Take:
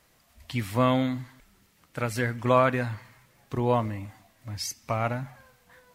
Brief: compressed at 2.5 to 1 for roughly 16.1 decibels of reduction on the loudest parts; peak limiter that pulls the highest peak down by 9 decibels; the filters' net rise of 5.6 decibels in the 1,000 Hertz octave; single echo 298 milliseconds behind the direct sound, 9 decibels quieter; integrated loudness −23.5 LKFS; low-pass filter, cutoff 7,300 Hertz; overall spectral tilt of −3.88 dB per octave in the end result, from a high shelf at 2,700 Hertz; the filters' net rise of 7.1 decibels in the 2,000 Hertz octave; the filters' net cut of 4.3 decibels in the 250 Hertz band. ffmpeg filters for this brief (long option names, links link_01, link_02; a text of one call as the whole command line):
ffmpeg -i in.wav -af "lowpass=7300,equalizer=frequency=250:width_type=o:gain=-5,equalizer=frequency=1000:width_type=o:gain=4.5,equalizer=frequency=2000:width_type=o:gain=5,highshelf=frequency=2700:gain=6.5,acompressor=threshold=-37dB:ratio=2.5,alimiter=level_in=3dB:limit=-24dB:level=0:latency=1,volume=-3dB,aecho=1:1:298:0.355,volume=16.5dB" out.wav